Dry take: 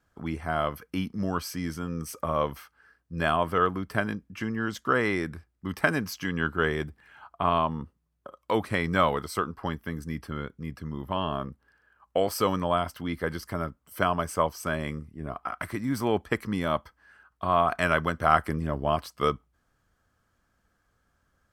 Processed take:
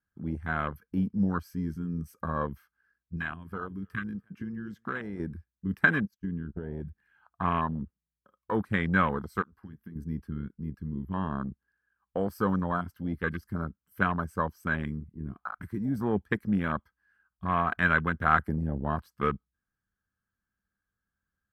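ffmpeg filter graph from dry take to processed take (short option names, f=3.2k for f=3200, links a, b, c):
-filter_complex "[0:a]asettb=1/sr,asplit=3[a][b][c];[a]atrim=end=3.164[d];[b]atrim=start=3.16:end=5.2,asetpts=PTS-STARTPTS,afade=t=in:d=0.004:c=qsin,afade=t=out:st=2.036:d=0.004:c=qsin,acrossover=split=990|3400[e][f][g];[e]acompressor=threshold=-35dB:ratio=4[h];[f]acompressor=threshold=-37dB:ratio=4[i];[g]acompressor=threshold=-51dB:ratio=4[j];[h][i][j]amix=inputs=3:normalize=0,aecho=1:1:291|582|873:0.1|0.034|0.0116,atrim=end_sample=89964[k];[c]atrim=start=5.196[l];[d][k]acrossfade=d=0.004:c1=hsin:c2=qsin[m];[m][l]acrossfade=d=0.004:c1=qsin:c2=hsin,asettb=1/sr,asplit=3[n][o][p];[n]atrim=end=6.054[q];[o]atrim=start=6.05:end=6.85,asetpts=PTS-STARTPTS,afade=t=in:d=0.004:c=qsin,afade=t=out:st=0.796:d=0.004:c=qsin,agate=range=-26dB:threshold=-35dB:ratio=16:release=100:detection=peak,tiltshelf=f=770:g=4.5,acompressor=threshold=-28dB:ratio=12:attack=3.2:release=140:knee=1:detection=peak[r];[p]atrim=start=6.846[s];[q][r]acrossfade=d=0.004:c1=hsin:c2=qsin[t];[t][s]acrossfade=d=0.004:c1=qsin:c2=hsin,asettb=1/sr,asplit=3[u][v][w];[u]atrim=end=9.424[x];[v]atrim=start=9.42:end=9.96,asetpts=PTS-STARTPTS,afade=t=in:d=0.004:c=qsin,afade=t=out:st=0.536:d=0.004:c=qsin,acompressor=threshold=-40dB:ratio=3:attack=3.2:release=140:knee=1:detection=peak,lowpass=f=2.3k:p=1,aemphasis=mode=production:type=75kf[y];[w]atrim=start=9.956[z];[x][y]acrossfade=d=0.004:c1=hsin:c2=qsin[aa];[aa][z]acrossfade=d=0.004:c1=qsin:c2=hsin,equalizer=f=200:t=o:w=0.33:g=8,equalizer=f=630:t=o:w=0.33:g=-9,equalizer=f=1.6k:t=o:w=0.33:g=9,equalizer=f=12.5k:t=o:w=0.33:g=8,afwtdn=0.0398,equalizer=f=74:w=0.52:g=4,volume=-3.5dB"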